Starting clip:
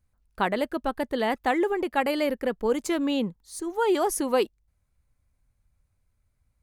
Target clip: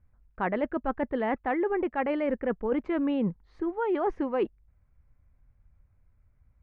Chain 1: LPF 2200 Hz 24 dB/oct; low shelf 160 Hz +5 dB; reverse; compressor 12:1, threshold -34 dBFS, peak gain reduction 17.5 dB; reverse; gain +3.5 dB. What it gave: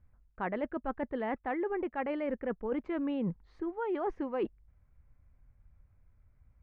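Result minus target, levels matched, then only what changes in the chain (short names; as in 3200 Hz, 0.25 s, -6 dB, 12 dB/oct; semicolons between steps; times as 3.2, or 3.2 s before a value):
compressor: peak gain reduction +6 dB
change: compressor 12:1, threshold -27.5 dBFS, peak gain reduction 11.5 dB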